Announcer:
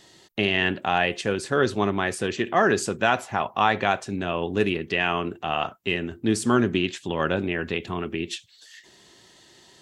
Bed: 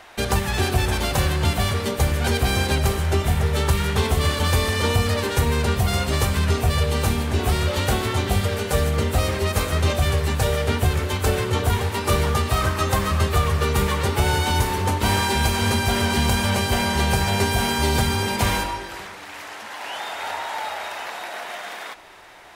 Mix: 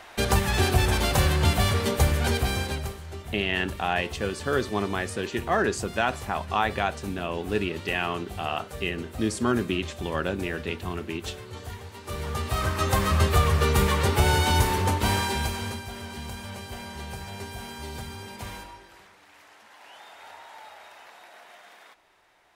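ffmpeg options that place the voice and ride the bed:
ffmpeg -i stem1.wav -i stem2.wav -filter_complex "[0:a]adelay=2950,volume=-4dB[link_01];[1:a]volume=16dB,afade=type=out:start_time=2.02:duration=0.98:silence=0.141254,afade=type=in:start_time=12.04:duration=1.09:silence=0.141254,afade=type=out:start_time=14.71:duration=1.14:silence=0.158489[link_02];[link_01][link_02]amix=inputs=2:normalize=0" out.wav

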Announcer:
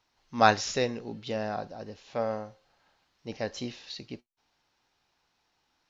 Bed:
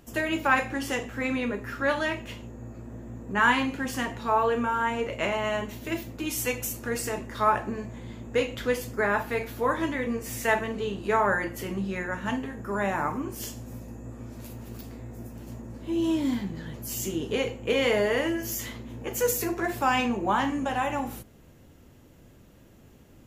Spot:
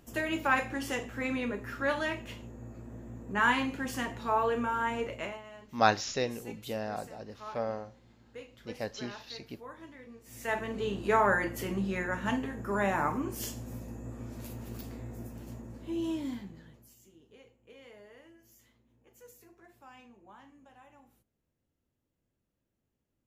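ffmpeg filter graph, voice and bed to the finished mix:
ffmpeg -i stem1.wav -i stem2.wav -filter_complex "[0:a]adelay=5400,volume=-3.5dB[link_01];[1:a]volume=15dB,afade=type=out:start_time=5.03:duration=0.4:silence=0.149624,afade=type=in:start_time=10.24:duration=0.7:silence=0.105925,afade=type=out:start_time=15.06:duration=1.9:silence=0.0398107[link_02];[link_01][link_02]amix=inputs=2:normalize=0" out.wav

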